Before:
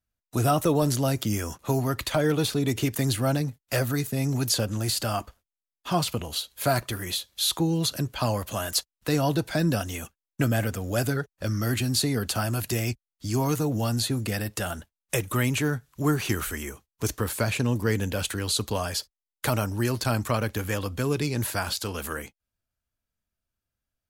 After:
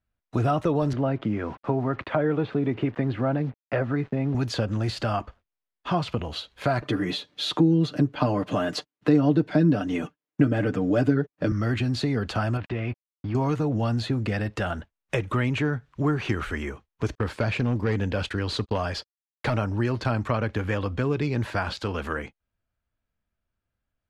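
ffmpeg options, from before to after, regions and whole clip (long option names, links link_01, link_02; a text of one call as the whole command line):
ffmpeg -i in.wav -filter_complex "[0:a]asettb=1/sr,asplit=3[link_01][link_02][link_03];[link_01]atrim=end=0.934[link_04];[link_02]atrim=start=0.93:end=4.35,asetpts=PTS-STARTPTS,afade=type=in:duration=0.004:curve=qsin,afade=type=out:start_time=3.416:duration=0.004:curve=qsin,highpass=140,lowpass=2900,aemphasis=mode=reproduction:type=75fm,acrusher=bits=7:mix=0:aa=0.5[link_05];[link_03]atrim=start=4.346[link_06];[link_04][link_05]acrossfade=duration=0.004:curve1=hsin:curve2=qsin[link_07];[link_07][link_06]acrossfade=duration=0.004:curve1=qsin:curve2=hsin,asettb=1/sr,asplit=3[link_08][link_09][link_10];[link_08]atrim=end=6.824[link_11];[link_09]atrim=start=6.82:end=11.52,asetpts=PTS-STARTPTS,afade=type=in:duration=0.004:curve=qsin,afade=type=out:start_time=4.696:duration=0.004:curve=qsin,highpass=110,equalizer=frequency=270:width=0.96:gain=10.5,aecho=1:1:6.7:0.61,atrim=end_sample=207270[link_12];[link_10]atrim=start=11.516[link_13];[link_11][link_12]acrossfade=duration=0.004:curve1=hsin:curve2=qsin[link_14];[link_14][link_13]acrossfade=duration=0.004:curve1=qsin:curve2=hsin,asettb=1/sr,asplit=3[link_15][link_16][link_17];[link_15]atrim=end=12.574[link_18];[link_16]atrim=start=12.57:end=13.35,asetpts=PTS-STARTPTS,afade=type=in:duration=0.004:curve=qsin,afade=type=out:start_time=0.776:duration=0.004:curve=qsin,lowpass=frequency=3300:width=0.5412,lowpass=frequency=3300:width=1.3066,acompressor=threshold=-30dB:ratio=2:attack=3.2:release=140:knee=1:detection=peak,aeval=exprs='sgn(val(0))*max(abs(val(0))-0.00473,0)':channel_layout=same[link_19];[link_17]atrim=start=13.346[link_20];[link_18][link_19]acrossfade=duration=0.004:curve1=hsin:curve2=qsin[link_21];[link_21][link_20]acrossfade=duration=0.004:curve1=qsin:curve2=hsin,asettb=1/sr,asplit=3[link_22][link_23][link_24];[link_22]atrim=end=17.154[link_25];[link_23]atrim=start=17.15:end=19.57,asetpts=PTS-STARTPTS,afade=type=in:duration=0.004:curve=qsin,afade=type=out:start_time=2.416:duration=0.004:curve=qsin,equalizer=frequency=4900:width=4.2:gain=4.5,volume=19.5dB,asoftclip=hard,volume=-19.5dB,agate=range=-41dB:threshold=-35dB:ratio=16:release=100:detection=peak[link_26];[link_24]atrim=start=19.566[link_27];[link_25][link_26]acrossfade=duration=0.004:curve1=hsin:curve2=qsin[link_28];[link_28][link_27]acrossfade=duration=0.004:curve1=qsin:curve2=hsin,lowpass=2600,acompressor=threshold=-28dB:ratio=2,volume=4.5dB" out.wav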